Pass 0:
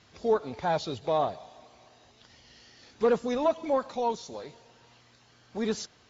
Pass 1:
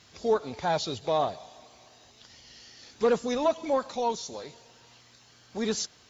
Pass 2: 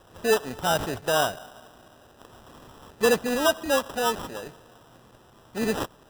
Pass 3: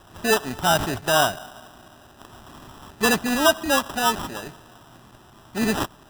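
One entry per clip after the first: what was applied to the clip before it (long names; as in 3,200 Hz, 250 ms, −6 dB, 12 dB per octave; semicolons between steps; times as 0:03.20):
high-shelf EQ 4,400 Hz +11 dB
decimation without filtering 20×; level +3 dB
parametric band 490 Hz −13 dB 0.3 octaves; level +5.5 dB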